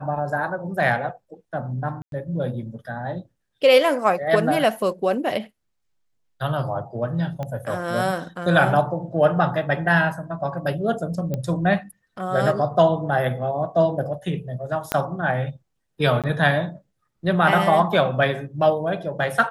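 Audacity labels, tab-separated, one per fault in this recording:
2.020000	2.120000	dropout 102 ms
7.430000	7.430000	pop -18 dBFS
11.340000	11.340000	pop -14 dBFS
14.920000	14.920000	pop -6 dBFS
16.220000	16.240000	dropout 17 ms

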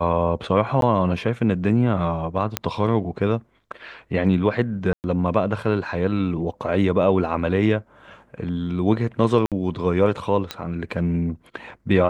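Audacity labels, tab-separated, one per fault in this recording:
0.810000	0.820000	dropout 12 ms
2.570000	2.570000	pop -4 dBFS
4.930000	5.040000	dropout 109 ms
6.520000	6.520000	dropout 2.8 ms
9.460000	9.520000	dropout 57 ms
10.510000	10.510000	pop -11 dBFS

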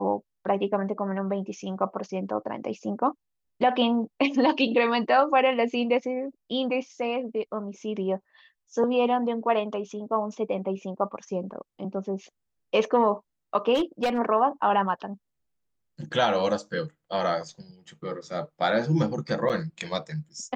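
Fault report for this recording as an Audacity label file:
13.740000	14.190000	clipped -20 dBFS
19.490000	19.500000	dropout 8.2 ms

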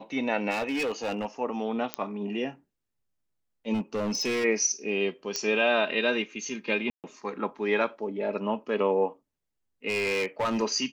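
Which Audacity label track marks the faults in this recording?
0.500000	1.260000	clipped -25.5 dBFS
1.940000	1.940000	pop -12 dBFS
3.730000	4.450000	clipped -25 dBFS
5.360000	5.360000	pop -15 dBFS
6.900000	7.040000	dropout 138 ms
9.880000	10.630000	clipped -23.5 dBFS

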